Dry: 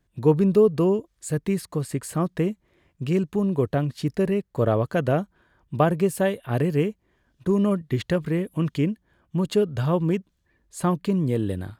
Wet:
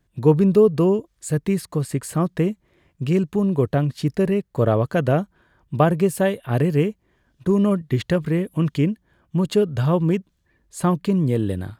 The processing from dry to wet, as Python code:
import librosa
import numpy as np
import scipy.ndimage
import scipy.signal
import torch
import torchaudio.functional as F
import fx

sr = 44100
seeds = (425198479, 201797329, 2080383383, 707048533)

y = fx.peak_eq(x, sr, hz=140.0, db=2.0, octaves=0.77)
y = y * 10.0 ** (2.5 / 20.0)